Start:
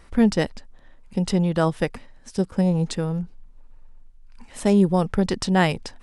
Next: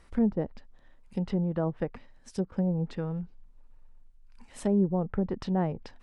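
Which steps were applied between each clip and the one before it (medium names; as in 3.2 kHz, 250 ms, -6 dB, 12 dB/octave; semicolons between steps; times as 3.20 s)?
low-pass that closes with the level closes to 740 Hz, closed at -16.5 dBFS; trim -7.5 dB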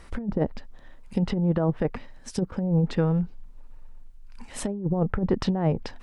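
compressor with a negative ratio -29 dBFS, ratio -0.5; trim +7 dB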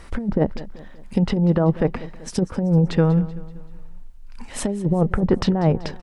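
feedback delay 191 ms, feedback 47%, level -17.5 dB; trim +5.5 dB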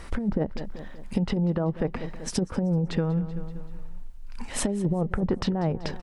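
compression 6:1, threshold -23 dBFS, peak gain reduction 11 dB; trim +1 dB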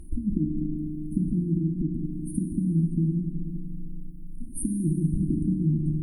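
FFT band-reject 360–8600 Hz; FDN reverb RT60 2.3 s, low-frequency decay 1.5×, high-frequency decay 0.75×, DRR 4 dB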